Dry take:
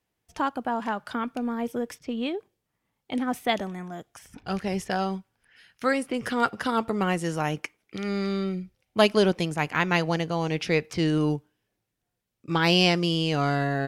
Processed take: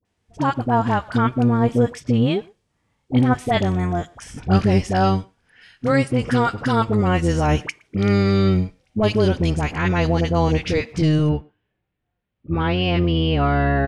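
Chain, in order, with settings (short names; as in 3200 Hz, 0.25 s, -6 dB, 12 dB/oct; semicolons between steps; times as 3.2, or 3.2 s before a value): octaver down 1 oct, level -1 dB; limiter -16 dBFS, peak gain reduction 10 dB; LPF 9400 Hz 24 dB/oct, from 11.24 s 3200 Hz; dispersion highs, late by 52 ms, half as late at 910 Hz; speakerphone echo 0.12 s, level -26 dB; vocal rider within 5 dB 0.5 s; harmonic-percussive split harmonic +7 dB; gain +3 dB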